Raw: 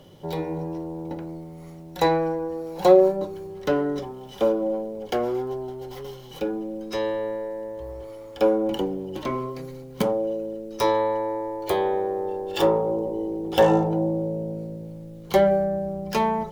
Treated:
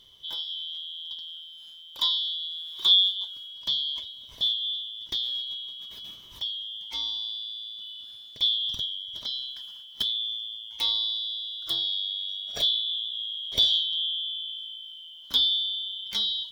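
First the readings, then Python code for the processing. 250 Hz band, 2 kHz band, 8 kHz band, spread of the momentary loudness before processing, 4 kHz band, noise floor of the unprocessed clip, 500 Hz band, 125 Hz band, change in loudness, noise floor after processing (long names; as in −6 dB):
below −30 dB, below −15 dB, can't be measured, 17 LU, +17.5 dB, −42 dBFS, below −30 dB, below −20 dB, −1.5 dB, −47 dBFS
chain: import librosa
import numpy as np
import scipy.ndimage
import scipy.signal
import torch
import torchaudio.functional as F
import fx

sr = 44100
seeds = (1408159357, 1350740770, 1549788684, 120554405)

y = fx.band_shuffle(x, sr, order='3412')
y = F.gain(torch.from_numpy(y), -5.5).numpy()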